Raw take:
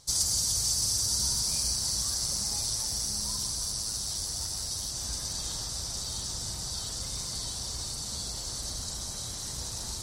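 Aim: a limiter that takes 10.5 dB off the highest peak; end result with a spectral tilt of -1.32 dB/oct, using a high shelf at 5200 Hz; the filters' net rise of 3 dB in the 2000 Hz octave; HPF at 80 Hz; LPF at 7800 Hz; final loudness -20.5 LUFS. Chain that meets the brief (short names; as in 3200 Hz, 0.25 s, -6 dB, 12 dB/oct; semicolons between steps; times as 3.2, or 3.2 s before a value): HPF 80 Hz; LPF 7800 Hz; bell 2000 Hz +4.5 dB; high shelf 5200 Hz -5 dB; gain +15.5 dB; limiter -12.5 dBFS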